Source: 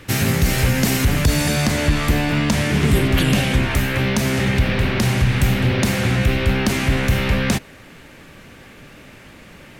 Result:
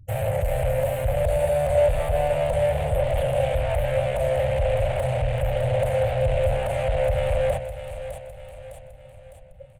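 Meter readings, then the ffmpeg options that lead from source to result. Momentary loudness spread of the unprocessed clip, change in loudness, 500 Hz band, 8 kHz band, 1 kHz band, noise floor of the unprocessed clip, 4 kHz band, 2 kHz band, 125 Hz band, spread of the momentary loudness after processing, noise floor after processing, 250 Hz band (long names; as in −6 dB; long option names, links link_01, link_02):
2 LU, −5.0 dB, +5.0 dB, −16.0 dB, −2.0 dB, −43 dBFS, −15.5 dB, −13.0 dB, −8.0 dB, 13 LU, −46 dBFS, −20.0 dB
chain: -filter_complex "[0:a]afftfilt=real='re*gte(hypot(re,im),0.0355)':imag='im*gte(hypot(re,im),0.0355)':win_size=1024:overlap=0.75,bandreject=frequency=60:width_type=h:width=6,bandreject=frequency=120:width_type=h:width=6,bandreject=frequency=180:width_type=h:width=6,bandreject=frequency=240:width_type=h:width=6,bandreject=frequency=300:width_type=h:width=6,asoftclip=type=tanh:threshold=-22dB,firequalizer=gain_entry='entry(110,0);entry(210,-25);entry(360,-25);entry(540,13);entry(1100,-12);entry(3000,-8);entry(5400,-21);entry(8600,6);entry(14000,3)':delay=0.05:min_phase=1,asplit=2[link_01][link_02];[link_02]aecho=0:1:607|1214|1821|2428|3035:0.251|0.118|0.0555|0.0261|0.0123[link_03];[link_01][link_03]amix=inputs=2:normalize=0,acrossover=split=2900[link_04][link_05];[link_05]acompressor=threshold=-46dB:ratio=4:attack=1:release=60[link_06];[link_04][link_06]amix=inputs=2:normalize=0,volume=3dB"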